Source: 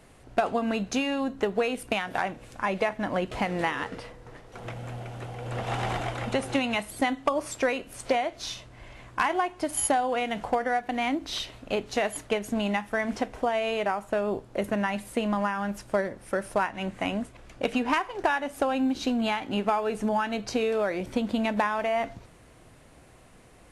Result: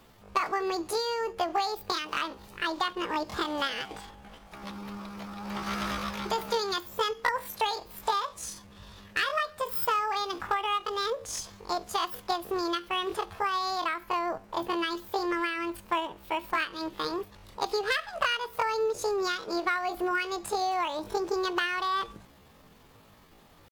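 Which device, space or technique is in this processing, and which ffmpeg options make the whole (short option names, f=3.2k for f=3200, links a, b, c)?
chipmunk voice: -af "asetrate=74167,aresample=44100,atempo=0.594604,volume=-2.5dB"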